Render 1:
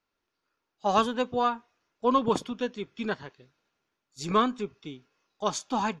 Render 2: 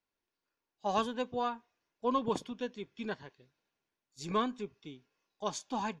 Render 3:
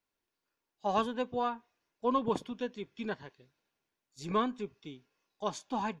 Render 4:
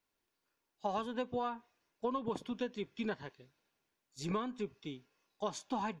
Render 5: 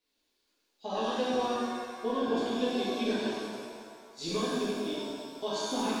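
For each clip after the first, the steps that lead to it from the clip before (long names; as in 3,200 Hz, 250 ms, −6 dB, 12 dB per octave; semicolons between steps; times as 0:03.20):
notch filter 1,300 Hz, Q 6.4; level −7 dB
dynamic equaliser 6,300 Hz, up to −6 dB, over −54 dBFS, Q 0.72; level +1.5 dB
downward compressor 10 to 1, threshold −34 dBFS, peak gain reduction 11.5 dB; level +2 dB
octave-band graphic EQ 125/250/500/1,000/4,000 Hz −10/+7/+4/−4/+11 dB; reverb with rising layers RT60 1.9 s, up +7 semitones, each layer −8 dB, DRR −9 dB; level −5.5 dB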